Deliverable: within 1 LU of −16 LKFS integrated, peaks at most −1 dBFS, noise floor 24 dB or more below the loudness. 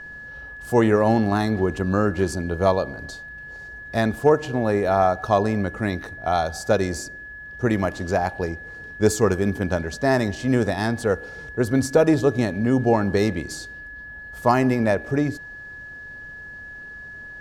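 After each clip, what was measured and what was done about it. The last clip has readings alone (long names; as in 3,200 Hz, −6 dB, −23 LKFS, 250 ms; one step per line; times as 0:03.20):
interfering tone 1,700 Hz; level of the tone −36 dBFS; integrated loudness −22.0 LKFS; sample peak −5.0 dBFS; target loudness −16.0 LKFS
→ notch filter 1,700 Hz, Q 30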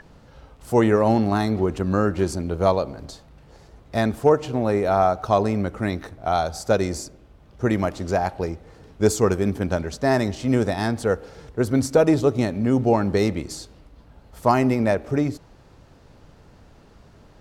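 interfering tone none found; integrated loudness −22.0 LKFS; sample peak −5.0 dBFS; target loudness −16.0 LKFS
→ level +6 dB
brickwall limiter −1 dBFS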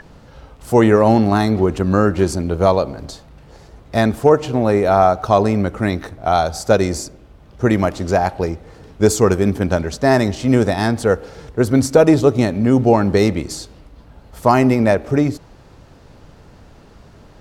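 integrated loudness −16.5 LKFS; sample peak −1.0 dBFS; background noise floor −45 dBFS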